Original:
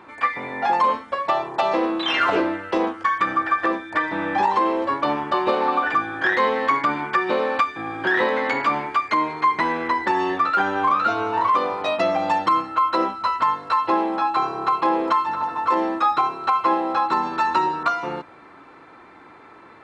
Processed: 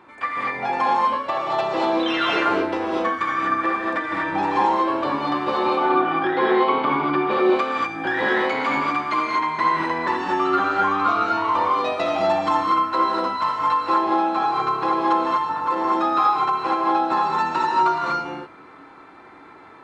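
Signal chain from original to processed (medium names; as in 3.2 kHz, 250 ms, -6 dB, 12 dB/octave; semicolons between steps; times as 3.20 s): 5.66–7.31 s: cabinet simulation 120–4100 Hz, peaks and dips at 160 Hz +8 dB, 380 Hz +10 dB, 800 Hz +5 dB, 1.8 kHz -8 dB; gated-style reverb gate 270 ms rising, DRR -3.5 dB; trim -4.5 dB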